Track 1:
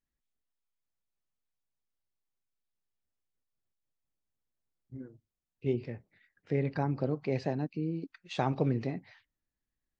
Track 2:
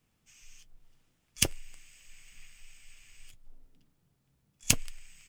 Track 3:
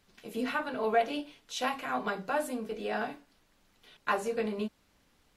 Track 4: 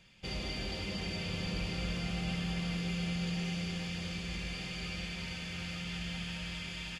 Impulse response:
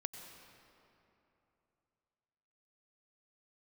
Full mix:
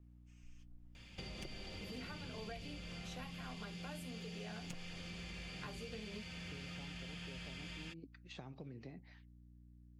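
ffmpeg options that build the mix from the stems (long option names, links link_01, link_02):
-filter_complex "[0:a]acompressor=threshold=-41dB:ratio=2,volume=-6.5dB[link_01];[1:a]lowpass=frequency=1400:poles=1,aecho=1:1:5.6:0.65,volume=-8dB[link_02];[2:a]adelay=1550,volume=-5.5dB[link_03];[3:a]adelay=950,volume=2.5dB[link_04];[link_01][link_04]amix=inputs=2:normalize=0,aeval=exprs='val(0)+0.00112*(sin(2*PI*60*n/s)+sin(2*PI*2*60*n/s)/2+sin(2*PI*3*60*n/s)/3+sin(2*PI*4*60*n/s)/4+sin(2*PI*5*60*n/s)/5)':channel_layout=same,acompressor=threshold=-36dB:ratio=6,volume=0dB[link_05];[link_02][link_03][link_05]amix=inputs=3:normalize=0,acrossover=split=350|2100[link_06][link_07][link_08];[link_06]acompressor=threshold=-49dB:ratio=4[link_09];[link_07]acompressor=threshold=-56dB:ratio=4[link_10];[link_08]acompressor=threshold=-54dB:ratio=4[link_11];[link_09][link_10][link_11]amix=inputs=3:normalize=0"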